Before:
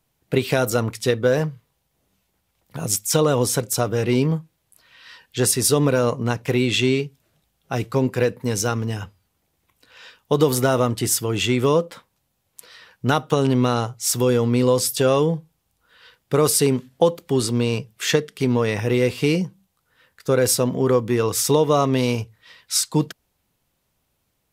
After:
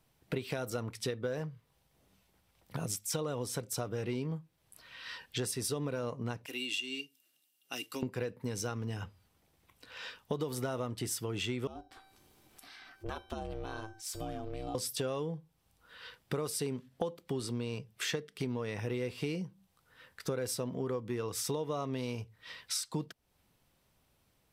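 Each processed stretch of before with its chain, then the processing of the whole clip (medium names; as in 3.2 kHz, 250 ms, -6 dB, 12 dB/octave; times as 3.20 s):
6.46–8.03 s: differentiator + small resonant body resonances 280/2800 Hz, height 18 dB
11.67–14.75 s: ring modulator 220 Hz + feedback comb 780 Hz, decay 0.32 s, mix 80% + upward compressor, threshold -41 dBFS
whole clip: treble shelf 10 kHz -5.5 dB; band-stop 6.8 kHz, Q 14; compression 4:1, threshold -36 dBFS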